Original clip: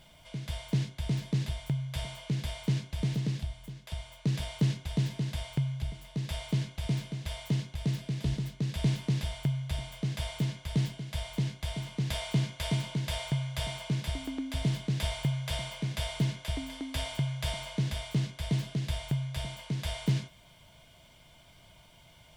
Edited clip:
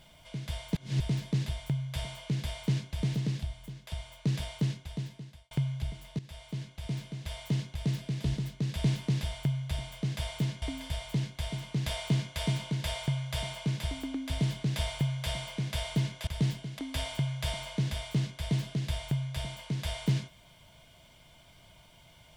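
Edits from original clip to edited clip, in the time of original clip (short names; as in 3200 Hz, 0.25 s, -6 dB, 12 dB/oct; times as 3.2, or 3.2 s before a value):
0.75–1 reverse
4.32–5.51 fade out
6.19–7.64 fade in, from -13.5 dB
10.62–11.14 swap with 16.51–16.79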